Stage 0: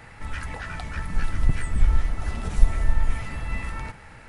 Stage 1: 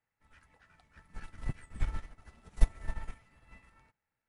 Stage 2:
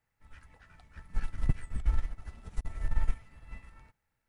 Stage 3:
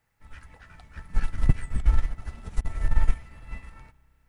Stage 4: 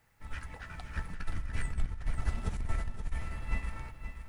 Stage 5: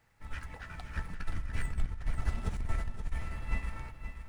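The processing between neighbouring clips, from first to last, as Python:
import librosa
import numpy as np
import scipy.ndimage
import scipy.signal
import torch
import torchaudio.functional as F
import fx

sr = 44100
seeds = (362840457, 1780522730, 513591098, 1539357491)

y1 = fx.low_shelf(x, sr, hz=88.0, db=-9.5)
y1 = fx.upward_expand(y1, sr, threshold_db=-44.0, expansion=2.5)
y1 = y1 * librosa.db_to_amplitude(1.5)
y2 = fx.low_shelf(y1, sr, hz=92.0, db=11.5)
y2 = fx.over_compress(y2, sr, threshold_db=-23.0, ratio=-0.5)
y2 = y2 * librosa.db_to_amplitude(-1.5)
y3 = fx.rev_spring(y2, sr, rt60_s=3.7, pass_ms=(31,), chirp_ms=70, drr_db=20.0)
y3 = y3 * librosa.db_to_amplitude(7.5)
y4 = fx.over_compress(y3, sr, threshold_db=-30.0, ratio=-1.0)
y4 = fx.echo_feedback(y4, sr, ms=525, feedback_pct=38, wet_db=-9.5)
y4 = y4 * librosa.db_to_amplitude(-2.5)
y5 = scipy.signal.medfilt(y4, 3)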